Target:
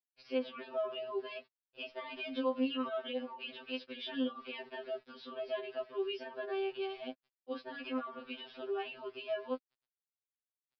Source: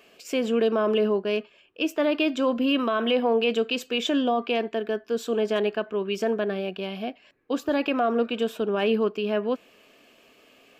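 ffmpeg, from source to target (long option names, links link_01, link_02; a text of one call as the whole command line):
ffmpeg -i in.wav -af "highpass=290,aeval=exprs='val(0)*gte(abs(val(0)),0.00531)':channel_layout=same,alimiter=limit=-20.5dB:level=0:latency=1:release=114,aresample=11025,aresample=44100,afftfilt=real='re*2.45*eq(mod(b,6),0)':imag='im*2.45*eq(mod(b,6),0)':win_size=2048:overlap=0.75,volume=-6.5dB" out.wav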